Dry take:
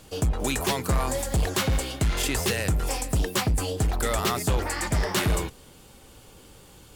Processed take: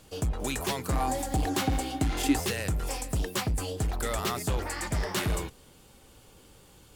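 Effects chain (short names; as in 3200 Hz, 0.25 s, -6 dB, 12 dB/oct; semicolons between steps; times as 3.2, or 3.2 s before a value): 0.92–2.39 small resonant body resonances 290/770 Hz, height 14 dB -> 17 dB, ringing for 95 ms; gain -5 dB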